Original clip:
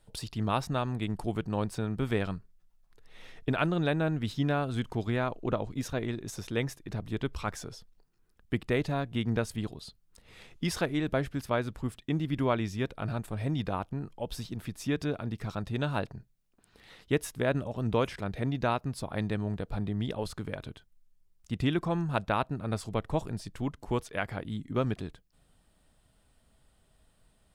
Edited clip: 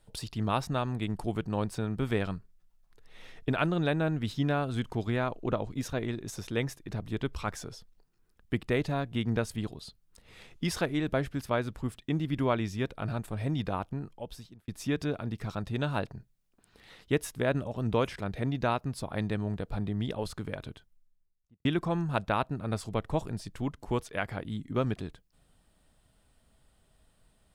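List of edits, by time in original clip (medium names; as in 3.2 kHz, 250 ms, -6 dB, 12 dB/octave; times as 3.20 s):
13.93–14.68 s: fade out
20.70–21.65 s: studio fade out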